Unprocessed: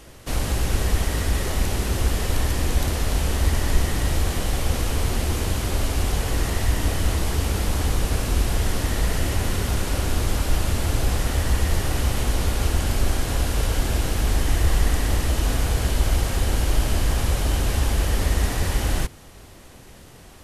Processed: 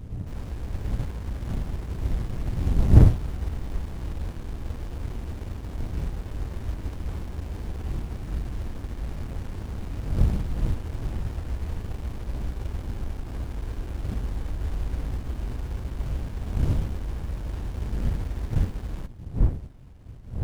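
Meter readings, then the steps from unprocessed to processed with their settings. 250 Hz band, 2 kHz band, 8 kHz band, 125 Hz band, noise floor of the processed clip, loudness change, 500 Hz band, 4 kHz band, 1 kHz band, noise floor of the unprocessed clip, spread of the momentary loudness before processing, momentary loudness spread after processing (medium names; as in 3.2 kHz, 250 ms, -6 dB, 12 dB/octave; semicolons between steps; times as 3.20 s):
-4.5 dB, -17.0 dB, -23.5 dB, -3.5 dB, -39 dBFS, -6.0 dB, -10.5 dB, -20.0 dB, -13.5 dB, -45 dBFS, 2 LU, 9 LU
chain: wind noise 100 Hz -18 dBFS; sliding maximum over 65 samples; trim -9.5 dB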